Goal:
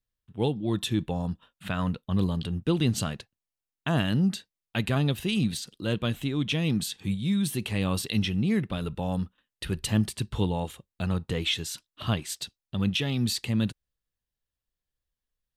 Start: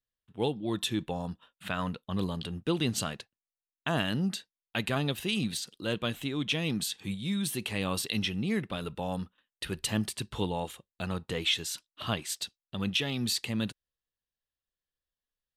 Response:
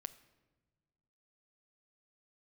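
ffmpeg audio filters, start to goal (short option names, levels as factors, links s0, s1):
-af "lowshelf=f=210:g=11"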